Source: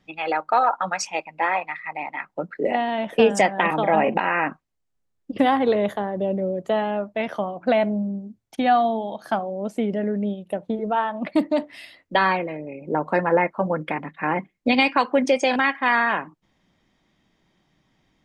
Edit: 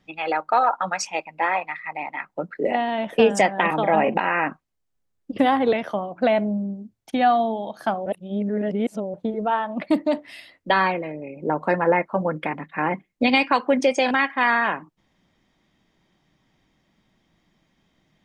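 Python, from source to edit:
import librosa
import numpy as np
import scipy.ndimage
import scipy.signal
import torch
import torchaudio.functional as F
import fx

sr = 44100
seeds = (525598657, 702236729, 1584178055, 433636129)

y = fx.edit(x, sr, fx.cut(start_s=5.73, length_s=1.45),
    fx.reverse_span(start_s=9.51, length_s=1.08), tone=tone)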